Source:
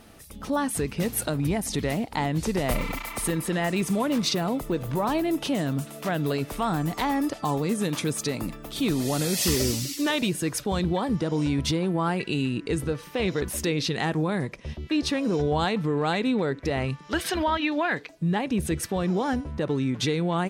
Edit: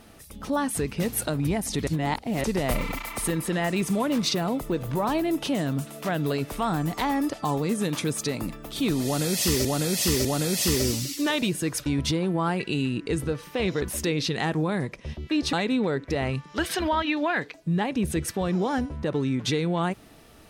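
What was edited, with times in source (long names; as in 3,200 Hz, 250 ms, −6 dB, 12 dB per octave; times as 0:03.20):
0:01.87–0:02.44: reverse
0:09.05–0:09.65: repeat, 3 plays
0:10.66–0:11.46: remove
0:15.13–0:16.08: remove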